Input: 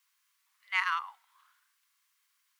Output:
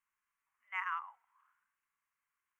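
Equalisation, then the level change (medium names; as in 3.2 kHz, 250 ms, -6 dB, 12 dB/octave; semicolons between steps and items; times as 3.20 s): Butterworth band-stop 4.2 kHz, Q 1.1; tilt EQ -2.5 dB/octave; treble shelf 3.5 kHz -6 dB; -5.0 dB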